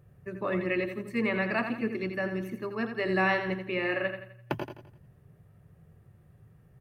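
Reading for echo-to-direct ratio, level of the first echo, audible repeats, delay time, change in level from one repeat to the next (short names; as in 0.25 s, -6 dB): -7.0 dB, -8.0 dB, 4, 85 ms, -7.5 dB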